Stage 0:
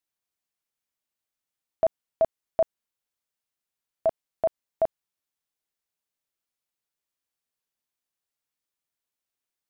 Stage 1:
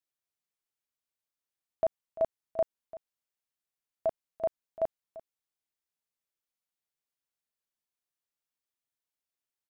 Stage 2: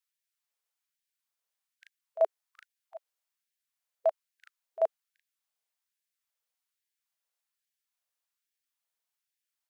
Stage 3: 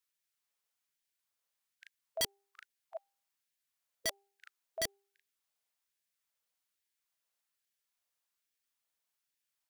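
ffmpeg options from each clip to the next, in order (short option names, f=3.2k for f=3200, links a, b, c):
-af "aecho=1:1:342:0.141,volume=-5.5dB"
-af "afftfilt=real='re*gte(b*sr/1024,400*pow(1600/400,0.5+0.5*sin(2*PI*1.2*pts/sr)))':imag='im*gte(b*sr/1024,400*pow(1600/400,0.5+0.5*sin(2*PI*1.2*pts/sr)))':win_size=1024:overlap=0.75,volume=3.5dB"
-af "aeval=exprs='(mod(22.4*val(0)+1,2)-1)/22.4':c=same,bandreject=f=397.5:t=h:w=4,bandreject=f=795:t=h:w=4,volume=1dB"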